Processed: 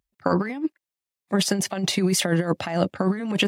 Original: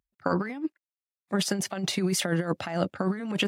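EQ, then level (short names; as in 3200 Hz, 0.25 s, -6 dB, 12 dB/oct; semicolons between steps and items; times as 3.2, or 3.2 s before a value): bell 1400 Hz -5 dB 0.25 oct; +5.0 dB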